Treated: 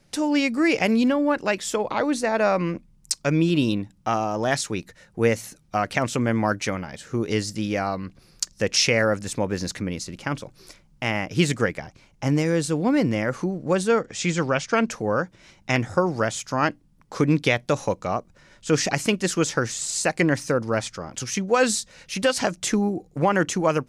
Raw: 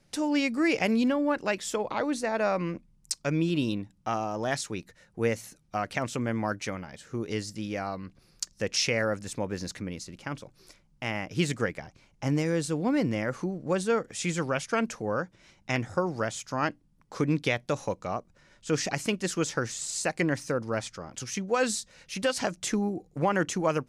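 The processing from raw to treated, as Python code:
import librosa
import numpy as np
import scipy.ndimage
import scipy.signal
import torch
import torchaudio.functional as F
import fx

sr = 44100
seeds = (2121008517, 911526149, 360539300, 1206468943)

p1 = fx.lowpass(x, sr, hz=7300.0, slope=24, at=(14.01, 14.91))
p2 = fx.rider(p1, sr, range_db=4, speed_s=2.0)
y = p1 + (p2 * librosa.db_to_amplitude(0.0))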